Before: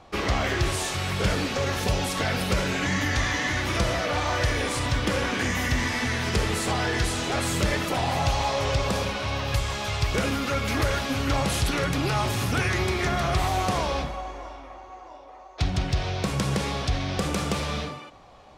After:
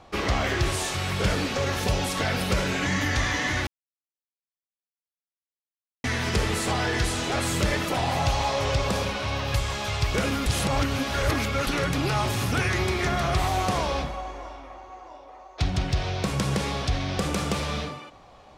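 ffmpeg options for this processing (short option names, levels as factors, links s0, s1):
-filter_complex "[0:a]asplit=5[s0][s1][s2][s3][s4];[s0]atrim=end=3.67,asetpts=PTS-STARTPTS,afade=t=out:st=3.666:d=0.004:c=hsin[s5];[s1]atrim=start=3.67:end=6.04,asetpts=PTS-STARTPTS,volume=0[s6];[s2]atrim=start=6.04:end=10.462,asetpts=PTS-STARTPTS,afade=t=in:d=0.004:c=hsin[s7];[s3]atrim=start=10.458:end=11.672,asetpts=PTS-STARTPTS,areverse[s8];[s4]atrim=start=11.668[s9];[s5][s6][s7]concat=n=3:v=0:a=1[s10];[s10][s8]acrossfade=d=0.004:c1=hsin:c2=hsin[s11];[s11][s9]acrossfade=d=0.004:c1=hsin:c2=hsin"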